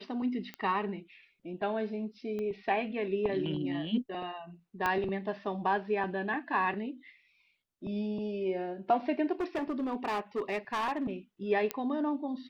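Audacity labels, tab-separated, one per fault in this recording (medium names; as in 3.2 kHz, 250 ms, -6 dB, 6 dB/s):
0.540000	0.540000	pop -25 dBFS
2.390000	2.390000	pop -27 dBFS
4.860000	4.860000	pop -16 dBFS
9.400000	11.110000	clipped -28 dBFS
11.710000	11.710000	pop -15 dBFS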